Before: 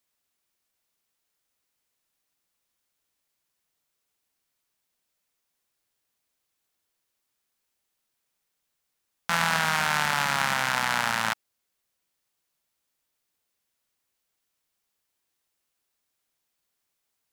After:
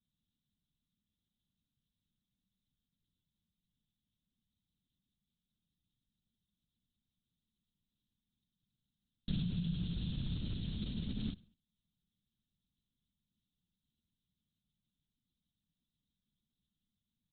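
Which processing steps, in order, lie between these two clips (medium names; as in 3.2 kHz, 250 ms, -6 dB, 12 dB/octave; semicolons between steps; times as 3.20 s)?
inverse Chebyshev band-stop 500–2100 Hz, stop band 50 dB; waveshaping leveller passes 1; peak limiter -25 dBFS, peak gain reduction 8 dB; compression, threshold -42 dBFS, peak gain reduction 8.5 dB; distance through air 180 m; feedback delay 70 ms, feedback 47%, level -21 dB; LPC vocoder at 8 kHz whisper; trim +12.5 dB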